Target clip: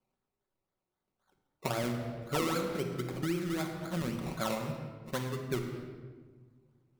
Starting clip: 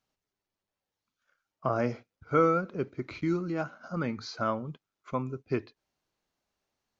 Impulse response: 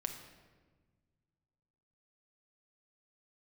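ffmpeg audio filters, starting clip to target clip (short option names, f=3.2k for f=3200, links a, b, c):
-filter_complex "[0:a]acrusher=samples=22:mix=1:aa=0.000001:lfo=1:lforange=13.2:lforate=3.8[a];[1:a]atrim=start_sample=2205,asetrate=43218,aresample=44100[b];[a][b]afir=irnorm=-1:irlink=0,acompressor=threshold=-31dB:ratio=2.5"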